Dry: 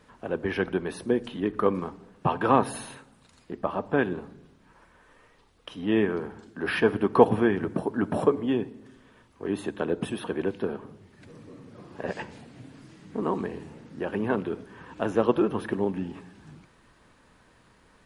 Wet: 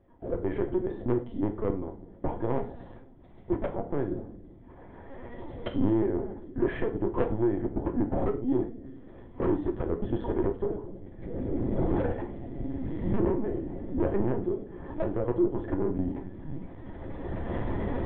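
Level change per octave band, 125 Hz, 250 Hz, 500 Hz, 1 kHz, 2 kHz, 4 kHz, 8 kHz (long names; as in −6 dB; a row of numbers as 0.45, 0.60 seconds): +2.5 dB, −0.5 dB, −3.0 dB, −8.5 dB, −11.5 dB, below −10 dB, can't be measured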